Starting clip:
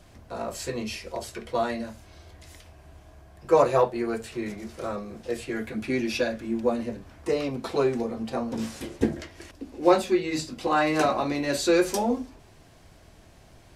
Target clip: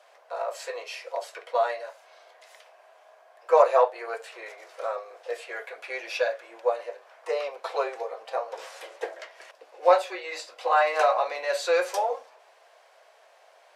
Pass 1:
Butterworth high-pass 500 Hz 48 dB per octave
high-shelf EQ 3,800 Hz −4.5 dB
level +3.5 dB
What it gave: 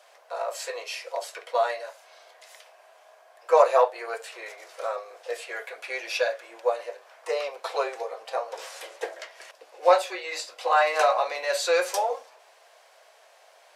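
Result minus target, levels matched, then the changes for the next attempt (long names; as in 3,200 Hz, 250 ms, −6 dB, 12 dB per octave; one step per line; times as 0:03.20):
8,000 Hz band +5.5 dB
change: high-shelf EQ 3,800 Hz −12.5 dB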